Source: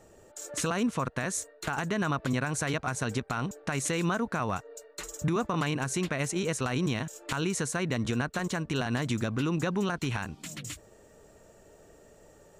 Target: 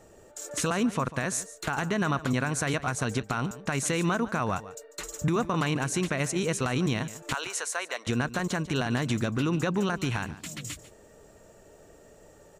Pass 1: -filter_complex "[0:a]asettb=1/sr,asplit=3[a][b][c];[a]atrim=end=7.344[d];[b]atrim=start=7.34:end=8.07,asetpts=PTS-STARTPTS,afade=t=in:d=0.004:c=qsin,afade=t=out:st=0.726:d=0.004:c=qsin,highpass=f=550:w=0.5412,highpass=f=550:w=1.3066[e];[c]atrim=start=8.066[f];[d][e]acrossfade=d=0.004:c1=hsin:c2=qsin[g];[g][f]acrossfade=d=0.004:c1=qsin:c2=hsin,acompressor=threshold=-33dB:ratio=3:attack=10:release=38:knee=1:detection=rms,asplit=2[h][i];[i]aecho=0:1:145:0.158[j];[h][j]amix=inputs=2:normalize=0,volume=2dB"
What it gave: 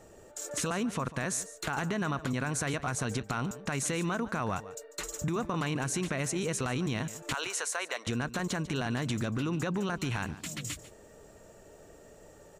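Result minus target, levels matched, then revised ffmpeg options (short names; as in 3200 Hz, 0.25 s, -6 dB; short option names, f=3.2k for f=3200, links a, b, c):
compressor: peak gain reduction +7 dB
-filter_complex "[0:a]asettb=1/sr,asplit=3[a][b][c];[a]atrim=end=7.344[d];[b]atrim=start=7.34:end=8.07,asetpts=PTS-STARTPTS,afade=t=in:d=0.004:c=qsin,afade=t=out:st=0.726:d=0.004:c=qsin,highpass=f=550:w=0.5412,highpass=f=550:w=1.3066[e];[c]atrim=start=8.066[f];[d][e]acrossfade=d=0.004:c1=hsin:c2=qsin[g];[g][f]acrossfade=d=0.004:c1=qsin:c2=hsin,asplit=2[h][i];[i]aecho=0:1:145:0.158[j];[h][j]amix=inputs=2:normalize=0,volume=2dB"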